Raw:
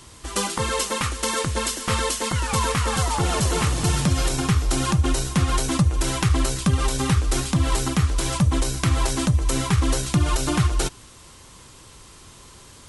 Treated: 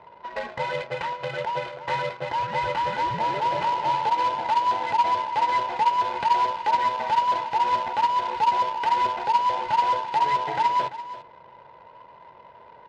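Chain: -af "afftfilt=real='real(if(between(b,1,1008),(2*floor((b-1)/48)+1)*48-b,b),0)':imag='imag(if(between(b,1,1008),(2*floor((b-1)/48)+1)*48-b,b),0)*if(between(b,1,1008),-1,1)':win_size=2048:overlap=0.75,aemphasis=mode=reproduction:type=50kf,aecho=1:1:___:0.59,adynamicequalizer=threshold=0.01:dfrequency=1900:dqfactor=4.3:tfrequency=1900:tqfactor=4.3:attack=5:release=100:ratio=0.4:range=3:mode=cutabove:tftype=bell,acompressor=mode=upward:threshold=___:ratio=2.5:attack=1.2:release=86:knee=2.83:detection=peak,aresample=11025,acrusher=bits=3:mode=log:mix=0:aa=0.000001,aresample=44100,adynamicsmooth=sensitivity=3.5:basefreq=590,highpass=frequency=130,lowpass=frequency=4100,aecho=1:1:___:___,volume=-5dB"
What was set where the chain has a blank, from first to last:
2, -31dB, 340, 0.2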